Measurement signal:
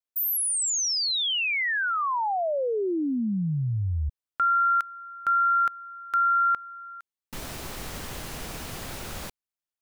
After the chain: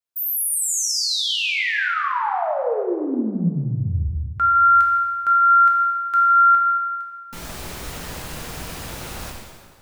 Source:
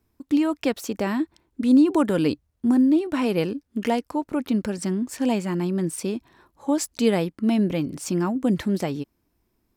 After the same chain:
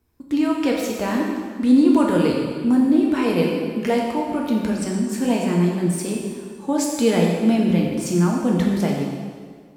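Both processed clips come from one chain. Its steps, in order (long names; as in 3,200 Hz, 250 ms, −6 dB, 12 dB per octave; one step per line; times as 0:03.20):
dense smooth reverb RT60 1.8 s, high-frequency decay 0.85×, DRR −2 dB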